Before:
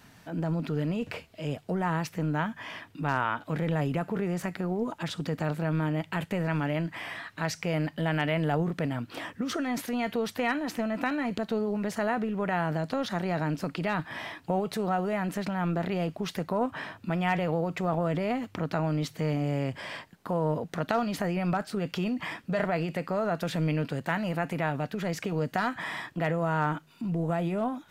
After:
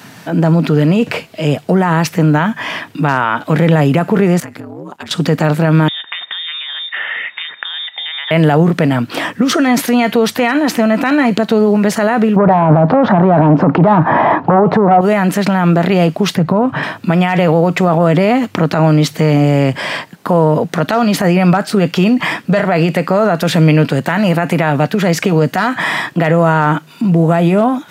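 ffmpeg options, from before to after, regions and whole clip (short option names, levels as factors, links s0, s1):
-filter_complex "[0:a]asettb=1/sr,asplit=3[s0][s1][s2];[s0]atrim=end=4.404[s3];[s1]atrim=start=4.4:end=5.11,asetpts=PTS-STARTPTS,afade=t=in:d=0.004:c=qsin,afade=t=out:st=0.706:d=0.004:c=qsin,agate=range=0.282:threshold=0.00562:ratio=16:release=100:detection=peak,aeval=exprs='val(0)*sin(2*PI*71*n/s)':c=same,acompressor=threshold=0.00794:ratio=16:attack=3.2:release=140:knee=1:detection=peak[s4];[s2]atrim=start=5.106[s5];[s3][s4]acrossfade=d=0.004:c1=hsin:c2=qsin[s6];[s6][s5]acrossfade=d=0.004:c1=qsin:c2=hsin,asettb=1/sr,asplit=3[s7][s8][s9];[s7]atrim=end=5.884[s10];[s8]atrim=start=5.88:end=8.31,asetpts=PTS-STARTPTS,afade=t=in:d=0.004:c=qsin,afade=t=out:st=2.426:d=0.004:c=qsin,acompressor=threshold=0.01:ratio=8:attack=3.2:release=140:knee=1:detection=peak,lowpass=f=3200:t=q:w=0.5098,lowpass=f=3200:t=q:w=0.6013,lowpass=f=3200:t=q:w=0.9,lowpass=f=3200:t=q:w=2.563,afreqshift=-3800,equalizer=f=1800:t=o:w=0.33:g=8[s11];[s9]atrim=start=8.306[s12];[s10][s11]acrossfade=d=0.004:c1=hsin:c2=qsin[s13];[s13][s12]acrossfade=d=0.004:c1=qsin:c2=hsin,asettb=1/sr,asplit=3[s14][s15][s16];[s14]atrim=end=12.364[s17];[s15]atrim=start=12.36:end=15.01,asetpts=PTS-STARTPTS,afade=t=in:d=0.004:c=qsin,afade=t=out:st=2.646:d=0.004:c=qsin,aeval=exprs='0.178*sin(PI/2*2.82*val(0)/0.178)':c=same,lowpass=f=920:t=q:w=1.8[s18];[s16]atrim=start=15.006[s19];[s17][s18]acrossfade=d=0.004:c1=hsin:c2=qsin[s20];[s20][s19]acrossfade=d=0.004:c1=qsin:c2=hsin,asettb=1/sr,asplit=3[s21][s22][s23];[s21]atrim=end=16.354[s24];[s22]atrim=start=16.35:end=16.83,asetpts=PTS-STARTPTS,afade=t=in:d=0.004:c=qsin,afade=t=out:st=0.476:d=0.004:c=qsin,lowpass=f=2300:p=1,equalizer=f=130:w=1.4:g=12,acompressor=threshold=0.0447:ratio=2.5:attack=3.2:release=140:knee=1:detection=peak[s25];[s23]atrim=start=16.826[s26];[s24][s25]acrossfade=d=0.004:c1=hsin:c2=qsin[s27];[s27][s26]acrossfade=d=0.004:c1=qsin:c2=hsin,highpass=f=120:w=0.5412,highpass=f=120:w=1.3066,alimiter=level_in=10:limit=0.891:release=50:level=0:latency=1,volume=0.891"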